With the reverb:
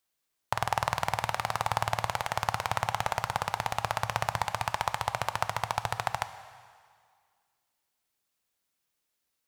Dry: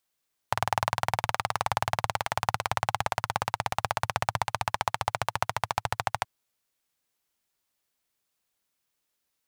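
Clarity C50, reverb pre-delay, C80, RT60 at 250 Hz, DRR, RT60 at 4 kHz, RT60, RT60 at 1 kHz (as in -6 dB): 12.0 dB, 3 ms, 13.0 dB, 1.9 s, 10.5 dB, 1.9 s, 2.0 s, 2.1 s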